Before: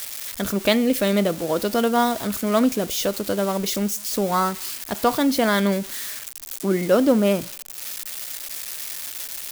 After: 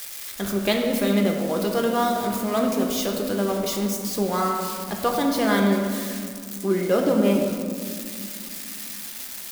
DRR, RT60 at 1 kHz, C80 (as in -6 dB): 1.0 dB, 1.9 s, 5.0 dB